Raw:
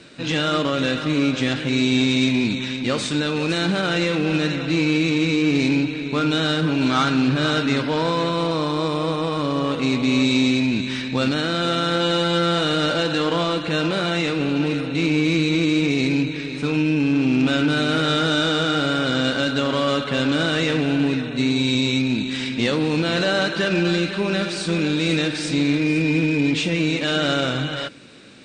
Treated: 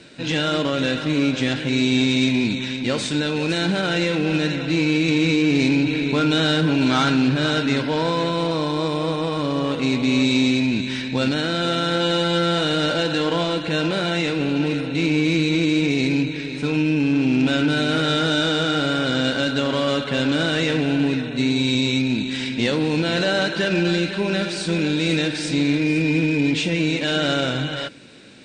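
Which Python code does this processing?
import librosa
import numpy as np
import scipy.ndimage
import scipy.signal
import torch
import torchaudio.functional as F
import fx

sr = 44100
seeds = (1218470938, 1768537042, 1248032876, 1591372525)

y = fx.notch(x, sr, hz=1200.0, q=7.1)
y = fx.env_flatten(y, sr, amount_pct=50, at=(5.08, 7.29))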